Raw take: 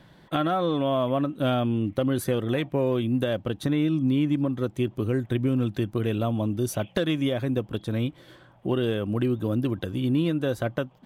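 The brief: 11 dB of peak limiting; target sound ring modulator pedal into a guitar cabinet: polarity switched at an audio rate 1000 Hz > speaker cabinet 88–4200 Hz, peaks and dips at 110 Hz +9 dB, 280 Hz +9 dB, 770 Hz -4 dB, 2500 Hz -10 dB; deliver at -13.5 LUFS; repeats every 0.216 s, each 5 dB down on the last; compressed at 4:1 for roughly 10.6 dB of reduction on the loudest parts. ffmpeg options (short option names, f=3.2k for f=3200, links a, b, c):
-af "acompressor=threshold=-33dB:ratio=4,alimiter=level_in=5.5dB:limit=-24dB:level=0:latency=1,volume=-5.5dB,aecho=1:1:216|432|648|864|1080|1296|1512:0.562|0.315|0.176|0.0988|0.0553|0.031|0.0173,aeval=exprs='val(0)*sgn(sin(2*PI*1000*n/s))':c=same,highpass=88,equalizer=f=110:t=q:w=4:g=9,equalizer=f=280:t=q:w=4:g=9,equalizer=f=770:t=q:w=4:g=-4,equalizer=f=2.5k:t=q:w=4:g=-10,lowpass=f=4.2k:w=0.5412,lowpass=f=4.2k:w=1.3066,volume=24dB"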